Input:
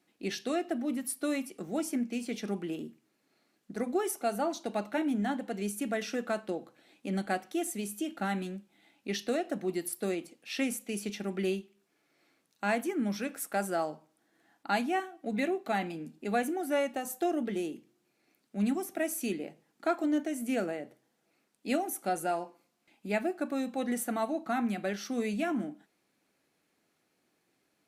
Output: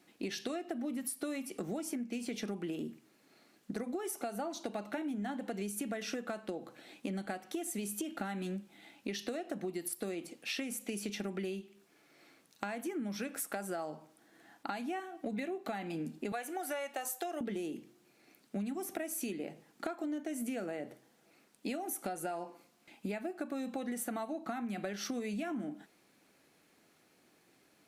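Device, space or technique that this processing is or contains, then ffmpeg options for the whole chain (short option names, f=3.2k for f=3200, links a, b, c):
serial compression, peaks first: -filter_complex "[0:a]asettb=1/sr,asplit=3[a][b][c];[a]atrim=end=16.324[d];[b]atrim=start=16.32:end=17.41,asetpts=PTS-STARTPTS,afade=t=in:d=0.004:c=qsin,afade=t=out:st=1.086:d=0.004:c=qsin,highpass=620[e];[c]atrim=start=17.406[f];[d][e]acrossfade=d=0.004:c1=hsin:c2=qsin[g];[g][f]acrossfade=d=0.004:c1=qsin:c2=hsin,acompressor=threshold=-39dB:ratio=6,acompressor=threshold=-43dB:ratio=3,volume=7.5dB"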